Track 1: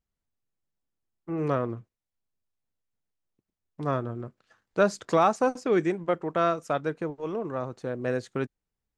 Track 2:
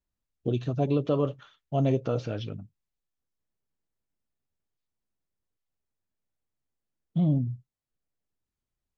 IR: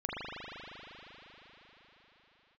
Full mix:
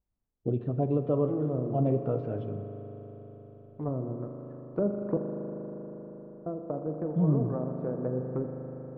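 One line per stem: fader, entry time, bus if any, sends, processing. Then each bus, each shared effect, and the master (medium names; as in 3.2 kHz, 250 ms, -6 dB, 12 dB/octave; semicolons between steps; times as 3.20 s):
-4.0 dB, 0.00 s, muted 5.17–6.46 s, send -7 dB, low-pass that closes with the level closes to 410 Hz, closed at -25 dBFS
-3.0 dB, 0.00 s, send -13 dB, none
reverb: on, RT60 4.9 s, pre-delay 39 ms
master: low-pass 1 kHz 12 dB/octave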